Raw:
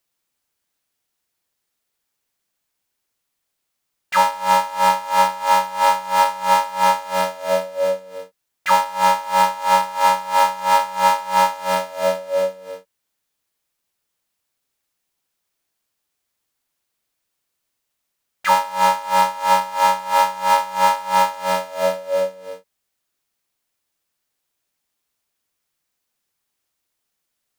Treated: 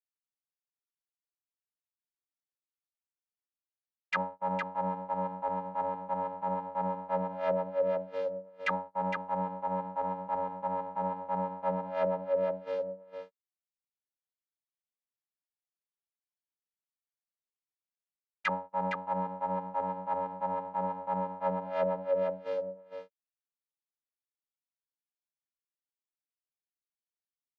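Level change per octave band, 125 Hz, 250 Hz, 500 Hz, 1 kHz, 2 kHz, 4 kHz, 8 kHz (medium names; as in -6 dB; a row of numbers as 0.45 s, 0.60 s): no reading, -2.5 dB, -9.5 dB, -17.0 dB, -16.0 dB, -26.0 dB, under -35 dB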